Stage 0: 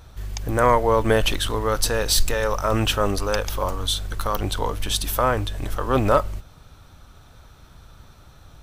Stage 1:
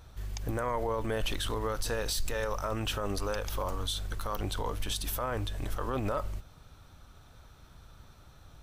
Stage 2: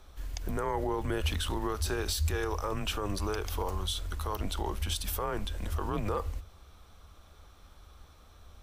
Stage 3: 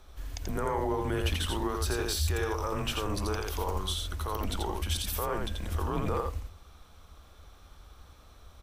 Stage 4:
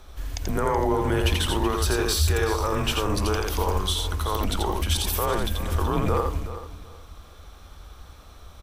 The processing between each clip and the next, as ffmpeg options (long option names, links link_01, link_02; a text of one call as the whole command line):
ffmpeg -i in.wav -af "alimiter=limit=-16dB:level=0:latency=1:release=59,volume=-6.5dB" out.wav
ffmpeg -i in.wav -af "afreqshift=-93" out.wav
ffmpeg -i in.wav -af "aecho=1:1:85:0.668" out.wav
ffmpeg -i in.wav -af "aecho=1:1:376|752|1128:0.224|0.0515|0.0118,volume=7dB" out.wav